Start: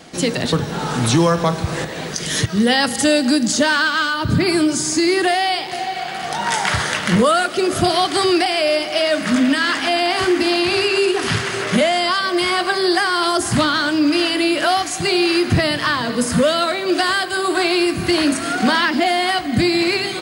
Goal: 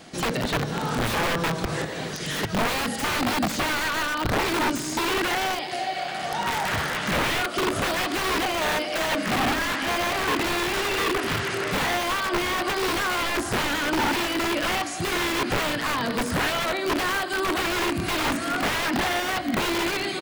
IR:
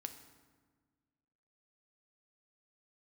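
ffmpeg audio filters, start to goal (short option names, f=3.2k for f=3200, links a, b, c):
-filter_complex "[0:a]asplit=2[a][b];[1:a]atrim=start_sample=2205,atrim=end_sample=6615[c];[b][c]afir=irnorm=-1:irlink=0,volume=-3.5dB[d];[a][d]amix=inputs=2:normalize=0,asplit=3[e][f][g];[f]asetrate=35002,aresample=44100,atempo=1.25992,volume=-13dB[h];[g]asetrate=37084,aresample=44100,atempo=1.18921,volume=-17dB[i];[e][h][i]amix=inputs=3:normalize=0,aeval=exprs='(mod(2.99*val(0)+1,2)-1)/2.99':c=same,acrossover=split=3400[j][k];[k]acompressor=threshold=-25dB:ratio=4:attack=1:release=60[l];[j][l]amix=inputs=2:normalize=0,volume=-7.5dB"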